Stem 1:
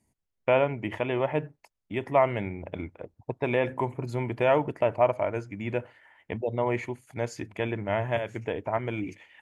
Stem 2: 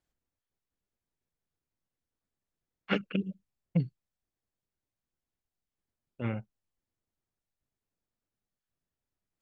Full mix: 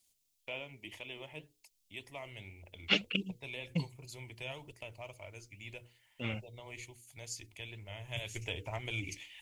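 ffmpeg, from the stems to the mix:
-filter_complex "[0:a]acrossover=split=330|3000[a][b][c];[b]acompressor=threshold=-39dB:ratio=1.5[d];[a][d][c]amix=inputs=3:normalize=0,asubboost=boost=12:cutoff=63,bandreject=f=60:t=h:w=6,bandreject=f=120:t=h:w=6,bandreject=f=180:t=h:w=6,bandreject=f=240:t=h:w=6,bandreject=f=300:t=h:w=6,bandreject=f=360:t=h:w=6,bandreject=f=420:t=h:w=6,bandreject=f=480:t=h:w=6,volume=-4dB,afade=t=in:st=8.05:d=0.27:silence=0.316228[e];[1:a]volume=-1dB[f];[e][f]amix=inputs=2:normalize=0,flanger=delay=1.3:depth=7:regen=71:speed=1.9:shape=triangular,aexciter=amount=9.3:drive=3.7:freq=2.4k"

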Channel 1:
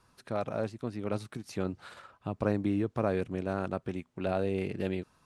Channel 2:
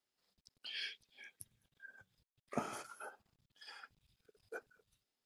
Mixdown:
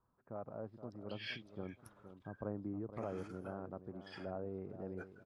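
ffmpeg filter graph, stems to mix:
-filter_complex "[0:a]lowpass=f=1.2k:w=0.5412,lowpass=f=1.2k:w=1.3066,volume=-13dB,asplit=3[a][b][c];[b]volume=-11.5dB[d];[1:a]aemphasis=mode=reproduction:type=50fm,adelay=450,volume=1.5dB[e];[c]apad=whole_len=251544[f];[e][f]sidechaincompress=threshold=-49dB:ratio=12:attack=6.6:release=179[g];[d]aecho=0:1:469|938|1407|1876:1|0.28|0.0784|0.022[h];[a][g][h]amix=inputs=3:normalize=0,equalizer=f=2.2k:w=1.1:g=3"

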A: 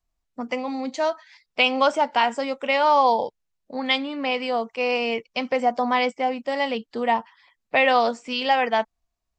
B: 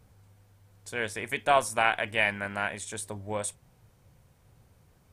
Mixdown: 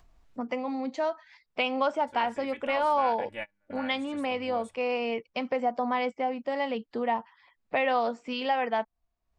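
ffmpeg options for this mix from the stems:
-filter_complex "[0:a]acompressor=mode=upward:threshold=-43dB:ratio=2.5,volume=0dB,asplit=2[a][b];[1:a]agate=range=-24dB:threshold=-49dB:ratio=16:detection=peak,aecho=1:1:3.5:0.94,adelay=1200,volume=-8dB[c];[b]apad=whole_len=279274[d];[c][d]sidechaingate=range=-38dB:threshold=-47dB:ratio=16:detection=peak[e];[a][e]amix=inputs=2:normalize=0,lowpass=f=1.9k:p=1,acompressor=threshold=-34dB:ratio=1.5"

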